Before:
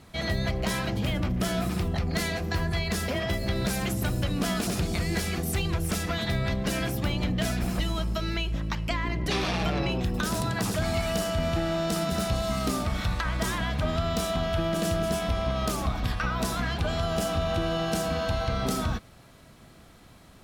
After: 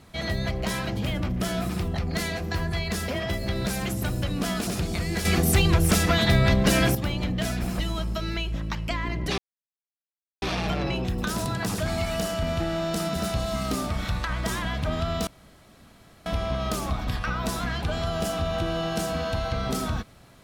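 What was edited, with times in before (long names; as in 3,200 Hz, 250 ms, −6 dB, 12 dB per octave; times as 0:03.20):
0:05.25–0:06.95: clip gain +8 dB
0:09.38: splice in silence 1.04 s
0:14.23–0:15.22: fill with room tone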